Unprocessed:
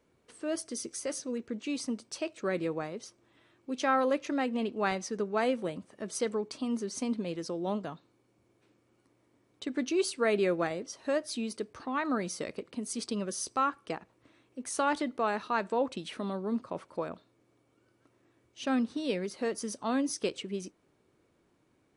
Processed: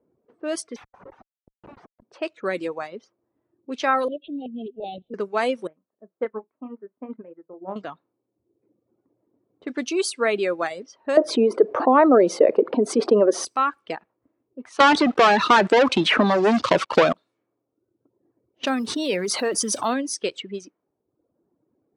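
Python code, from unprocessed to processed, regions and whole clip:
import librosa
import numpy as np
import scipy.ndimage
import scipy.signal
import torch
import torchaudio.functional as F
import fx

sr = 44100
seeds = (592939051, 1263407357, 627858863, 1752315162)

y = fx.chain(x, sr, fx.tone_stack(knobs='10-0-10'),
    fx.schmitt(flips_db=-43.5), at=(0.76, 2.02))
y = fx.chain(y, sr, fx.ellip_bandstop(low_hz=730.0, high_hz=3100.0, order=3, stop_db=50),
    fx.peak_eq(hz=1000.0, db=-12.5, octaves=1.5),
    fx.lpc_vocoder(seeds[0], excitation='pitch_kept', order=16), at=(4.08, 5.14))
y = fx.chain(y, sr, fx.lowpass(hz=1900.0, slope=24),
    fx.doubler(ms=32.0, db=-9.0),
    fx.upward_expand(threshold_db=-40.0, expansion=2.5), at=(5.67, 7.76))
y = fx.chain(y, sr, fx.bandpass_q(hz=540.0, q=0.74),
    fx.peak_eq(hz=440.0, db=15.0, octaves=2.8),
    fx.env_flatten(amount_pct=50), at=(11.17, 13.45))
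y = fx.chain(y, sr, fx.leveller(passes=5),
    fx.air_absorb(metres=120.0),
    fx.band_squash(depth_pct=100), at=(14.8, 17.13))
y = fx.chain(y, sr, fx.block_float(bits=7),
    fx.env_flatten(amount_pct=70), at=(18.63, 19.94))
y = fx.env_lowpass(y, sr, base_hz=480.0, full_db=-28.5)
y = fx.highpass(y, sr, hz=360.0, slope=6)
y = fx.dereverb_blind(y, sr, rt60_s=1.0)
y = y * librosa.db_to_amplitude(8.0)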